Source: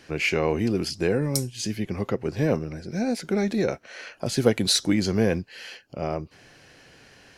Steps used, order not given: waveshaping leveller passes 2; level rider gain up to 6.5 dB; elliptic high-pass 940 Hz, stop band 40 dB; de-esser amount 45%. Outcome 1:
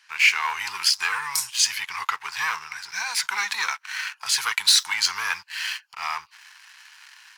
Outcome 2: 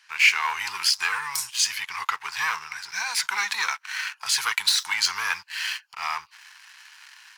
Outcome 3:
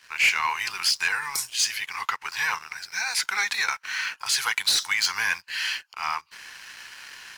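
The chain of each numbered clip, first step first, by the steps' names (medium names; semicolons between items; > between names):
de-esser > level rider > waveshaping leveller > elliptic high-pass; level rider > de-esser > waveshaping leveller > elliptic high-pass; level rider > elliptic high-pass > de-esser > waveshaping leveller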